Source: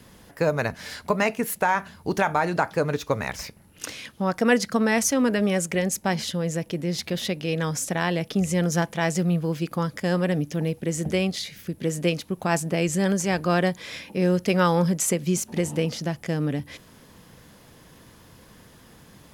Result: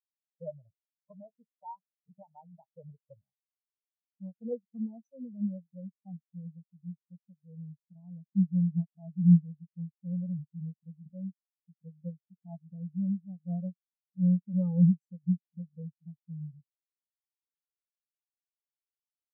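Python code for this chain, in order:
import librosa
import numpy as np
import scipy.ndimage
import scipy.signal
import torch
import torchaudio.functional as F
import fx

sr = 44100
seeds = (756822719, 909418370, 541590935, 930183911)

y = fx.peak_eq(x, sr, hz=200.0, db=9.5, octaves=2.9)
y = fx.fixed_phaser(y, sr, hz=770.0, stages=4)
y = fx.spectral_expand(y, sr, expansion=4.0)
y = F.gain(torch.from_numpy(y), -4.5).numpy()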